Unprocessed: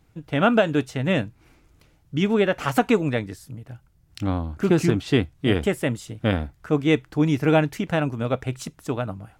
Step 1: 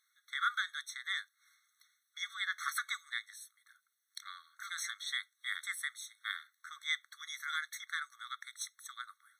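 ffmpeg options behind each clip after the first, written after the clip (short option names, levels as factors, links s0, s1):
-af "equalizer=f=800:w=0.7:g=-13.5,afftfilt=real='re*eq(mod(floor(b*sr/1024/1100),2),1)':imag='im*eq(mod(floor(b*sr/1024/1100),2),1)':win_size=1024:overlap=0.75"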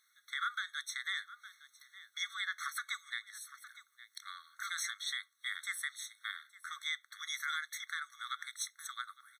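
-af "aecho=1:1:861:0.0794,alimiter=level_in=2.11:limit=0.0631:level=0:latency=1:release=374,volume=0.473,volume=1.68"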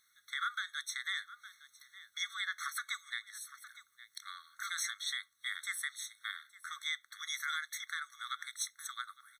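-af "bass=f=250:g=10,treble=f=4000:g=2"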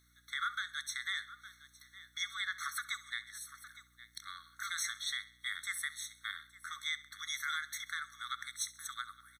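-af "aecho=1:1:66|132|198|264:0.126|0.0592|0.0278|0.0131,aeval=exprs='val(0)+0.000316*(sin(2*PI*60*n/s)+sin(2*PI*2*60*n/s)/2+sin(2*PI*3*60*n/s)/3+sin(2*PI*4*60*n/s)/4+sin(2*PI*5*60*n/s)/5)':c=same"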